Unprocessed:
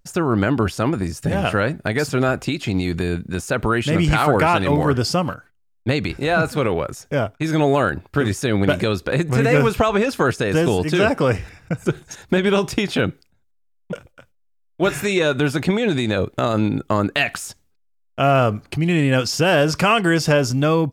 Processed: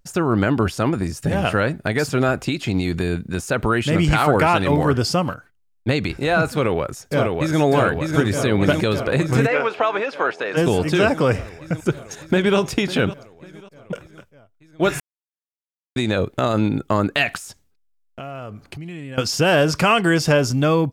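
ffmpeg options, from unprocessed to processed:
ffmpeg -i in.wav -filter_complex "[0:a]asplit=2[link_01][link_02];[link_02]afade=type=in:start_time=6.51:duration=0.01,afade=type=out:start_time=7.6:duration=0.01,aecho=0:1:600|1200|1800|2400|3000|3600|4200|4800|5400|6000|6600|7200:0.707946|0.530959|0.39822|0.298665|0.223998|0.167999|0.125999|0.0944994|0.0708745|0.0531559|0.0398669|0.0299002[link_03];[link_01][link_03]amix=inputs=2:normalize=0,asplit=3[link_04][link_05][link_06];[link_04]afade=type=out:start_time=9.46:duration=0.02[link_07];[link_05]highpass=530,lowpass=3100,afade=type=in:start_time=9.46:duration=0.02,afade=type=out:start_time=10.56:duration=0.02[link_08];[link_06]afade=type=in:start_time=10.56:duration=0.02[link_09];[link_07][link_08][link_09]amix=inputs=3:normalize=0,asplit=2[link_10][link_11];[link_11]afade=type=in:start_time=11.74:duration=0.01,afade=type=out:start_time=12.58:duration=0.01,aecho=0:1:550|1100|1650:0.16788|0.0503641|0.0151092[link_12];[link_10][link_12]amix=inputs=2:normalize=0,asettb=1/sr,asplit=3[link_13][link_14][link_15];[link_13]atrim=end=17.374[link_16];[link_14]atrim=start=17.37:end=19.18,asetpts=PTS-STARTPTS,afade=type=in:duration=0.004:curve=qsin,afade=type=out:start_time=1.806:duration=0.004:curve=qsin,acompressor=threshold=-33dB:ratio=4:attack=3.2:release=140:knee=1:detection=peak[link_17];[link_15]atrim=start=19.176[link_18];[link_16][link_17]acrossfade=duration=0.004:curve1=hsin:curve2=qsin[link_19];[link_19][link_18]acrossfade=duration=0.004:curve1=qsin:curve2=hsin,asplit=3[link_20][link_21][link_22];[link_20]atrim=end=15,asetpts=PTS-STARTPTS,afade=type=out:start_time=14.996:duration=0.004:curve=hsin[link_23];[link_21]atrim=start=15:end=15.96,asetpts=PTS-STARTPTS,volume=0[link_24];[link_22]atrim=start=15.96,asetpts=PTS-STARTPTS,afade=type=in:duration=0.004:curve=hsin[link_25];[link_23][link_24][link_25]concat=n=3:v=0:a=1" out.wav

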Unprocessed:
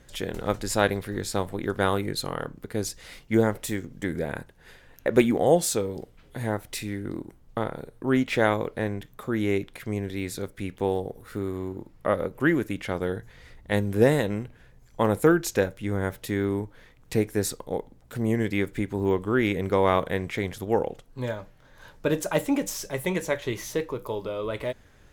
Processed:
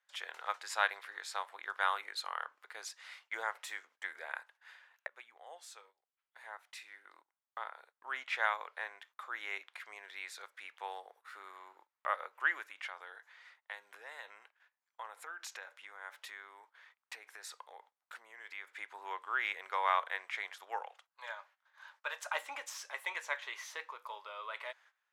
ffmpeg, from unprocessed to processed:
ffmpeg -i in.wav -filter_complex "[0:a]asettb=1/sr,asplit=3[link_01][link_02][link_03];[link_01]atrim=end=12.664[link_04];[link_02]atrim=start=12.66:end=18.74,asetpts=PTS-STARTPTS,afade=type=in:duration=0.004:curve=qsin,afade=type=out:start_time=6.076:duration=0.004:curve=qsin,acompressor=threshold=-29dB:ratio=6:attack=3.2:release=140:knee=1:detection=peak[link_05];[link_03]atrim=start=18.736[link_06];[link_04][link_05]acrossfade=duration=0.004:curve1=hsin:curve2=qsin[link_07];[link_07][link_06]acrossfade=duration=0.004:curve1=qsin:curve2=hsin,asettb=1/sr,asplit=3[link_08][link_09][link_10];[link_08]atrim=end=20.814[link_11];[link_09]atrim=start=20.81:end=22.33,asetpts=PTS-STARTPTS,afade=type=in:duration=0.004:curve=qsin,afade=type=out:start_time=1.516:duration=0.004:curve=qsin,highpass=frequency=510:width=0.5412,highpass=frequency=510:width=1.3066[link_12];[link_10]atrim=start=22.326[link_13];[link_11][link_12]acrossfade=duration=0.004:curve1=hsin:curve2=qsin[link_14];[link_14][link_13]acrossfade=duration=0.004:curve1=qsin:curve2=hsin,asplit=2[link_15][link_16];[link_15]atrim=end=5.07,asetpts=PTS-STARTPTS,afade=type=out:start_time=5.066:duration=0.004:curve=hsin:silence=0.0841395[link_17];[link_16]atrim=start=5.07,asetpts=PTS-STARTPTS,afade=type=in:duration=4:silence=0.0841395[link_18];[link_17][link_18]concat=n=2:v=0:a=1,highpass=frequency=960:width=0.5412,highpass=frequency=960:width=1.3066,aemphasis=mode=reproduction:type=75fm,agate=range=-17dB:threshold=-60dB:ratio=16:detection=peak,volume=-2dB" out.wav

